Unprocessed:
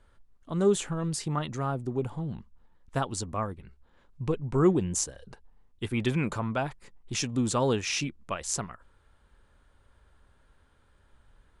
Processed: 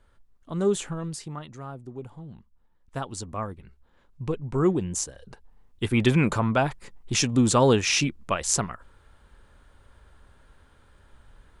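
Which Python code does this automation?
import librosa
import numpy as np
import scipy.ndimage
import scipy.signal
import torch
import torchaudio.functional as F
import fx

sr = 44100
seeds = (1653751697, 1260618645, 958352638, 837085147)

y = fx.gain(x, sr, db=fx.line((0.91, 0.0), (1.44, -8.0), (2.28, -8.0), (3.47, 0.0), (5.08, 0.0), (5.95, 7.0)))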